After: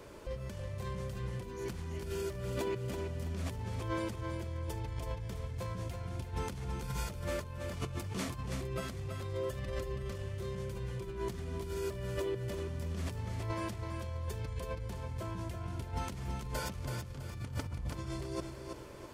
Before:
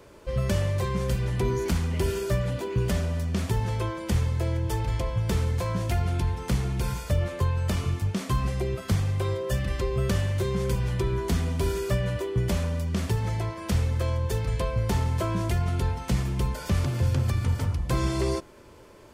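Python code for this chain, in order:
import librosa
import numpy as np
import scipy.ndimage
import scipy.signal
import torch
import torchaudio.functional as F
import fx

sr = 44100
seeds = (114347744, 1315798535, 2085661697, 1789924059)

y = fx.over_compress(x, sr, threshold_db=-33.0, ratio=-1.0)
y = fx.echo_feedback(y, sr, ms=328, feedback_pct=35, wet_db=-6)
y = F.gain(torch.from_numpy(y), -7.0).numpy()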